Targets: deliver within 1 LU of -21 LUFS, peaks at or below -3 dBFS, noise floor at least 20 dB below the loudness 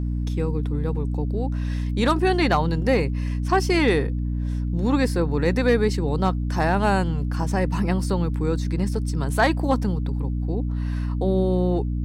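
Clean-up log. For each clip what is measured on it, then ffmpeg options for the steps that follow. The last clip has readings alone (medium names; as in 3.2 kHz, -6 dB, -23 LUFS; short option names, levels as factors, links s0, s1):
hum 60 Hz; highest harmonic 300 Hz; hum level -22 dBFS; loudness -23.0 LUFS; peak level -8.5 dBFS; loudness target -21.0 LUFS
-> -af "bandreject=f=60:t=h:w=6,bandreject=f=120:t=h:w=6,bandreject=f=180:t=h:w=6,bandreject=f=240:t=h:w=6,bandreject=f=300:t=h:w=6"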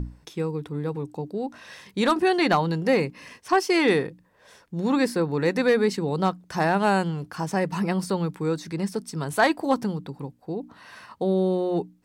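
hum not found; loudness -25.0 LUFS; peak level -10.0 dBFS; loudness target -21.0 LUFS
-> -af "volume=1.58"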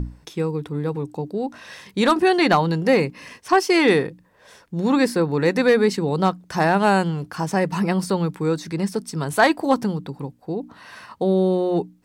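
loudness -21.0 LUFS; peak level -6.0 dBFS; noise floor -55 dBFS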